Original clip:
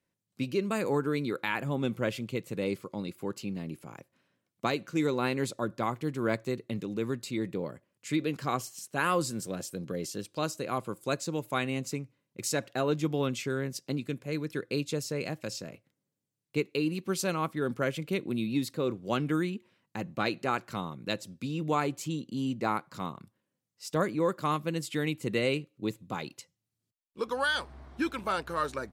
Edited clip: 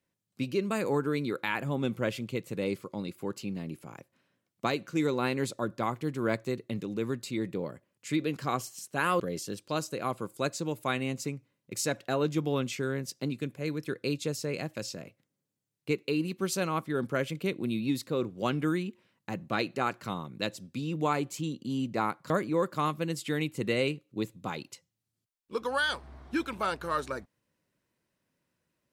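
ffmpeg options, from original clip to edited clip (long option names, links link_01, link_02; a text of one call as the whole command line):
ffmpeg -i in.wav -filter_complex "[0:a]asplit=3[link_01][link_02][link_03];[link_01]atrim=end=9.202[link_04];[link_02]atrim=start=9.868:end=22.972[link_05];[link_03]atrim=start=23.958[link_06];[link_04][link_05]acrossfade=duration=0.004:curve1=hsin:curve2=hsin[link_07];[link_07][link_06]acrossfade=duration=0.004:curve1=hsin:curve2=hsin" out.wav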